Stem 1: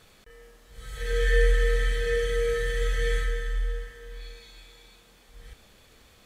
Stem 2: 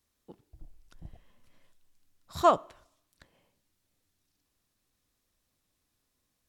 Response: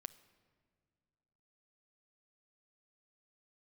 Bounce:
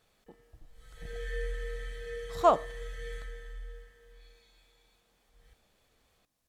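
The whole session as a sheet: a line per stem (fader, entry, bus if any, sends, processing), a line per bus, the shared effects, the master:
-17.5 dB, 0.00 s, send -5 dB, none
-0.5 dB, 0.00 s, no send, tremolo saw up 3.4 Hz, depth 55%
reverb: on, pre-delay 7 ms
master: peaking EQ 720 Hz +4.5 dB 0.87 oct

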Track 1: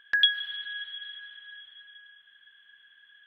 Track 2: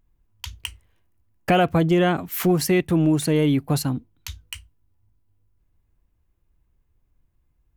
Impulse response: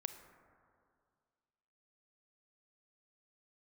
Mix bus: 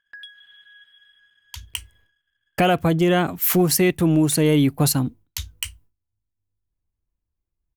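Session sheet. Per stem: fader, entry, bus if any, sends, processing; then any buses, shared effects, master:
-13.0 dB, 0.00 s, no send, compression 3:1, threshold -27 dBFS, peak gain reduction 8.5 dB; waveshaping leveller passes 1
-6.0 dB, 1.10 s, no send, gate with hold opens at -52 dBFS; treble shelf 5.6 kHz +8.5 dB; level rider gain up to 13.5 dB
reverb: none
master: tape noise reduction on one side only decoder only

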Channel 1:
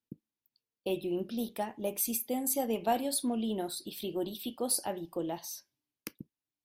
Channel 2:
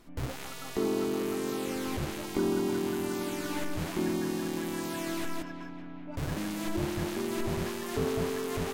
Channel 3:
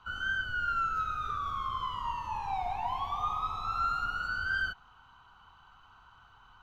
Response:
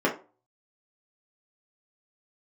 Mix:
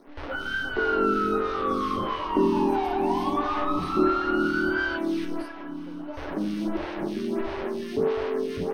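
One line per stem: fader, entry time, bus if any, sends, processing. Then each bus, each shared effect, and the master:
-14.5 dB, 0.70 s, no send, none
+2.0 dB, 0.00 s, send -16.5 dB, bit crusher 9-bit; lamp-driven phase shifter 1.5 Hz
+2.0 dB, 0.25 s, send -18 dB, none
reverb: on, RT60 0.35 s, pre-delay 3 ms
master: Savitzky-Golay filter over 15 samples

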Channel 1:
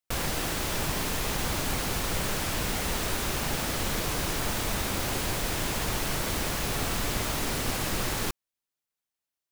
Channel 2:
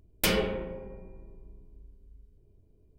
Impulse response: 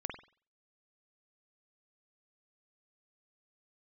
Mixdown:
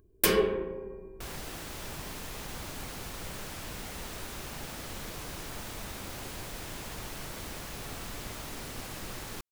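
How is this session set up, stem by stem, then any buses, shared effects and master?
-11.0 dB, 1.10 s, no send, none
-4.5 dB, 0.00 s, no send, treble shelf 7.2 kHz +11.5 dB; small resonant body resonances 390/1100/1600 Hz, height 13 dB, ringing for 30 ms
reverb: none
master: none

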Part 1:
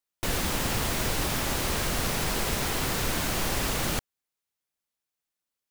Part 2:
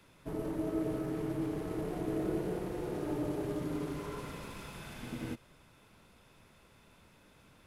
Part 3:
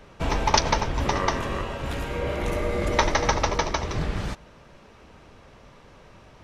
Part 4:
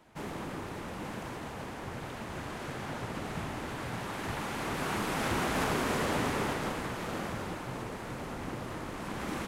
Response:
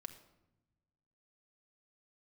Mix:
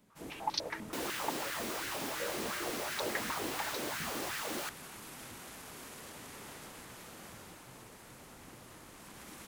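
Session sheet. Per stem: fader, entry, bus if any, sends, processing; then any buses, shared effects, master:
-10.5 dB, 0.70 s, no send, LFO high-pass sine 2.8 Hz 270–1700 Hz
-19.0 dB, 0.00 s, no send, none
-7.0 dB, 0.00 s, no send, step-sequenced band-pass 10 Hz 230–4200 Hz
-2.0 dB, 0.00 s, no send, pre-emphasis filter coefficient 0.8; peak limiter -37.5 dBFS, peak gain reduction 11 dB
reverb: none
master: none

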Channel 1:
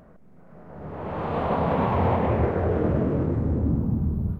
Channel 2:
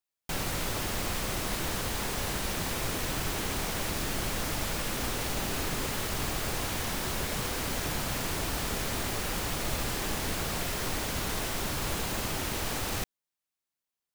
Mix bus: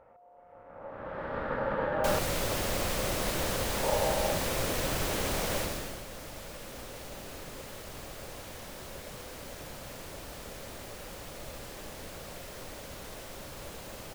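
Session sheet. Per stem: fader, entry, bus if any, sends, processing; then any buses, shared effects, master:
-8.0 dB, 0.00 s, muted 2.19–3.83 s, no send, ring modulator 710 Hz
5.58 s 0 dB -> 6.04 s -12.5 dB, 1.75 s, no send, none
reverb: none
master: peaking EQ 550 Hz +8.5 dB 0.49 oct

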